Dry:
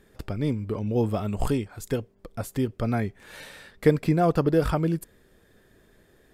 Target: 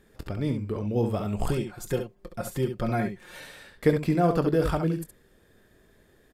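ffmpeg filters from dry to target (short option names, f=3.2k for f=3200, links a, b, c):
-filter_complex "[0:a]asettb=1/sr,asplit=3[a][b][c];[a]atrim=end=1.494[d];[b]atrim=start=1.49:end=3.39,asetpts=PTS-STARTPTS,afade=t=in:d=0.004:c=qsin,afade=t=out:st=1.896:d=0.004:c=qsin,aecho=1:1:5.6:0.68,atrim=end_sample=83790[e];[c]atrim=start=3.386[f];[d][e]acrossfade=d=0.004:c1=hsin:c2=qsin[g];[g][f]acrossfade=d=0.004:c1=qsin:c2=hsin,aecho=1:1:23|68:0.211|0.422,volume=-2dB"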